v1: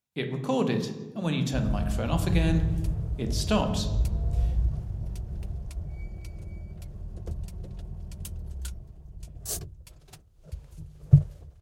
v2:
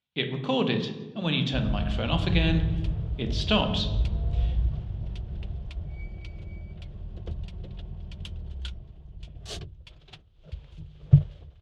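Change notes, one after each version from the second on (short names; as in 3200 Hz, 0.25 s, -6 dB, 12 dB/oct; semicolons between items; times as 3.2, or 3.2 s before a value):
master: add synth low-pass 3300 Hz, resonance Q 3.5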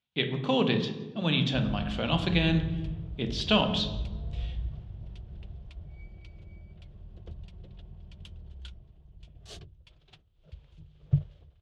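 background -8.5 dB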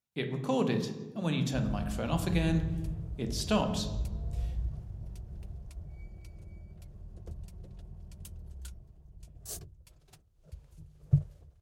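speech -3.0 dB; master: remove synth low-pass 3300 Hz, resonance Q 3.5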